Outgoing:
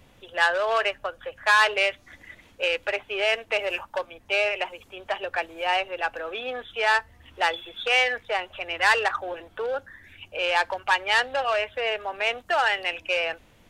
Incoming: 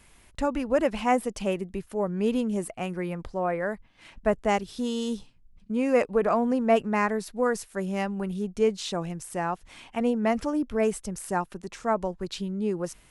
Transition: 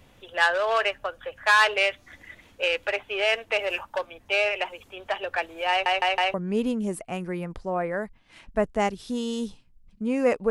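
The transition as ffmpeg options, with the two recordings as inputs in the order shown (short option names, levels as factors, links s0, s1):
-filter_complex "[0:a]apad=whole_dur=10.5,atrim=end=10.5,asplit=4[s0][s1][s2][s3];[s0]atrim=end=5.862[s4];[s1]atrim=start=5.698:end=5.862[s5];[s2]atrim=start=5.698:end=5.862[s6];[s3]atrim=start=5.698:end=5.862[s7];[1:a]atrim=start=2.028:end=6.19[s8];[s4][s5]acrossfade=d=0.004:c1=hsin:c2=hsin[s9];[s9][s6]acrossfade=d=0.004:c1=hsin:c2=hsin[s10];[s10][s7]acrossfade=d=0.004:c1=hsin:c2=hsin[s11];[s11][s8]acrossfade=d=0.004:c1=hsin:c2=hsin"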